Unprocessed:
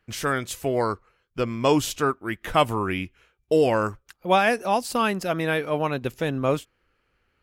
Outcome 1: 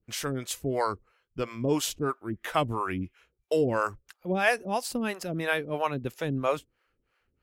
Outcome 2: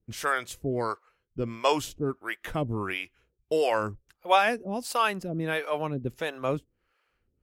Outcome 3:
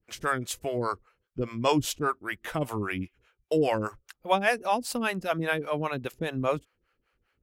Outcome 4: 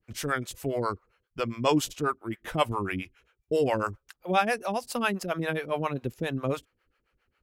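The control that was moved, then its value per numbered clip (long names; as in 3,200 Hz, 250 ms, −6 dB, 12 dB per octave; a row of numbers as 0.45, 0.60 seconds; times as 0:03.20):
two-band tremolo in antiphase, speed: 3, 1.5, 5, 7.4 Hertz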